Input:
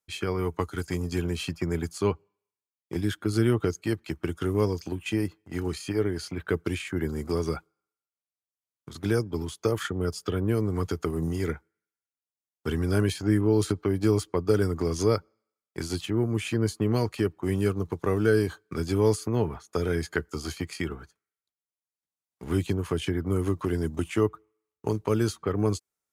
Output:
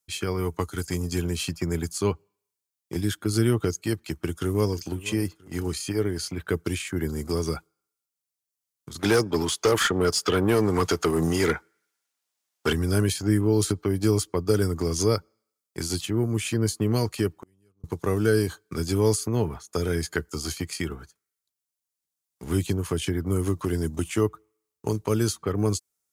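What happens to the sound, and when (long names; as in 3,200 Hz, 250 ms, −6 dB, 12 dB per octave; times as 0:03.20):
0:04.18–0:04.82: delay throw 490 ms, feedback 35%, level −17.5 dB
0:08.99–0:12.73: mid-hump overdrive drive 21 dB, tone 2,700 Hz, clips at −11 dBFS
0:17.37–0:17.84: gate with flip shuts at −27 dBFS, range −40 dB
whole clip: bass and treble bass +2 dB, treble +9 dB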